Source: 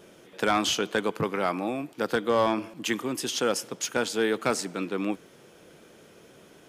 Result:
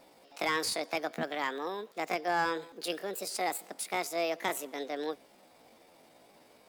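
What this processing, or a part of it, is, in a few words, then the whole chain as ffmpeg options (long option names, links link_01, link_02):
chipmunk voice: -af "asetrate=66075,aresample=44100,atempo=0.66742,volume=-6.5dB"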